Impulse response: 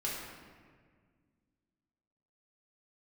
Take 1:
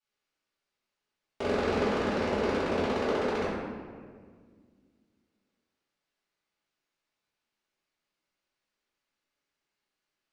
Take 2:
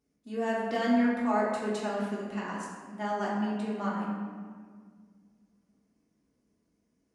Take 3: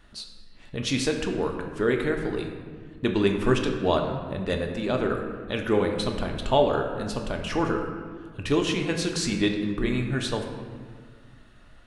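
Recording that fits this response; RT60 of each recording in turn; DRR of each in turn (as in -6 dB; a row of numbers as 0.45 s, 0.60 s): 2; 1.7 s, 1.7 s, 1.8 s; -16.0 dB, -7.0 dB, 2.5 dB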